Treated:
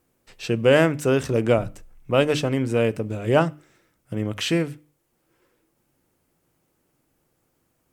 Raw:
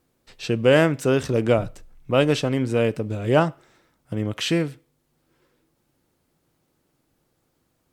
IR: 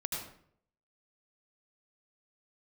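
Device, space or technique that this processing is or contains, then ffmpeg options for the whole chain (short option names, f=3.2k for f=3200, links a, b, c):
exciter from parts: -filter_complex "[0:a]bandreject=f=50:t=h:w=6,bandreject=f=100:t=h:w=6,bandreject=f=150:t=h:w=6,bandreject=f=200:t=h:w=6,bandreject=f=250:t=h:w=6,bandreject=f=300:t=h:w=6,asplit=2[a][b];[b]highpass=f=3k:w=0.5412,highpass=f=3k:w=1.3066,asoftclip=type=tanh:threshold=-35.5dB,highpass=2.2k,volume=-7.5dB[c];[a][c]amix=inputs=2:normalize=0,asettb=1/sr,asplit=3[d][e][f];[d]atrim=end=3.414[g];[e]atrim=start=3.41:end=4.14,asetpts=PTS-STARTPTS,afade=t=in:d=0.004:c=qsin,afade=t=out:st=0.726:d=0.004:c=qsin,equalizer=f=890:w=1.3:g=-6[h];[f]atrim=start=4.136[i];[g][h]acrossfade=d=0.004:c1=hsin:c2=qsin[j];[j][i]acrossfade=d=0.004:c1=qsin:c2=hsin"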